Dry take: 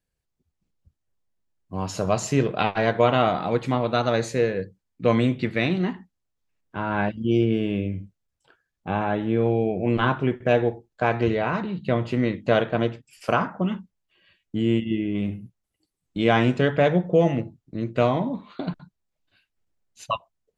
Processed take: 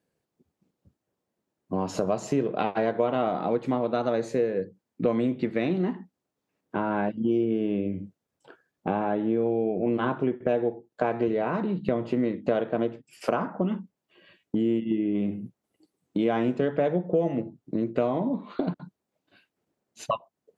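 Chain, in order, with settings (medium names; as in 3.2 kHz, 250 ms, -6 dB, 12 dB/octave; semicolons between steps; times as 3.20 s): high-pass 250 Hz 12 dB/octave; tilt shelf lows +7.5 dB, about 940 Hz; compression 3:1, threshold -35 dBFS, peak gain reduction 18 dB; trim +8 dB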